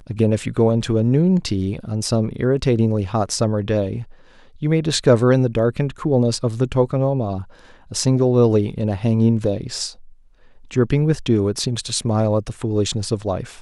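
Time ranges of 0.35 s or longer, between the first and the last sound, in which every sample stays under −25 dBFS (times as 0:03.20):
0:04.02–0:04.62
0:07.42–0:07.92
0:09.89–0:10.71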